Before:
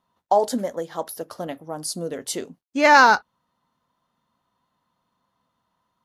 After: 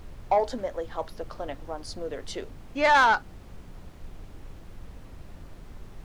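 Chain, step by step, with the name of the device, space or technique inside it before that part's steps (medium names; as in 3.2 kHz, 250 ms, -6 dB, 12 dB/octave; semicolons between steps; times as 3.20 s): aircraft cabin announcement (band-pass 370–3900 Hz; saturation -10.5 dBFS, distortion -13 dB; brown noise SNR 11 dB); trim -2.5 dB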